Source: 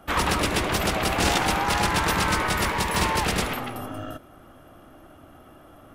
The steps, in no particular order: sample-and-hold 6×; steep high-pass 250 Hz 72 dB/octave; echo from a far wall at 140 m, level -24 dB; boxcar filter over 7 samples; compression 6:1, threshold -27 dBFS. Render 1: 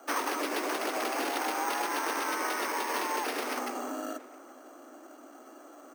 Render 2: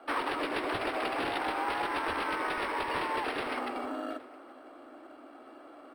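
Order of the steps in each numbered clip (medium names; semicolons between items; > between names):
boxcar filter > sample-and-hold > echo from a far wall > compression > steep high-pass; echo from a far wall > compression > steep high-pass > sample-and-hold > boxcar filter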